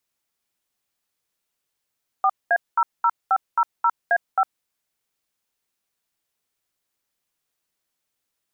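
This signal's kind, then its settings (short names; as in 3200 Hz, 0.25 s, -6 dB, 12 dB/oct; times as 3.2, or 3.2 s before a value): DTMF "4A00500A5", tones 56 ms, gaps 0.211 s, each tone -17.5 dBFS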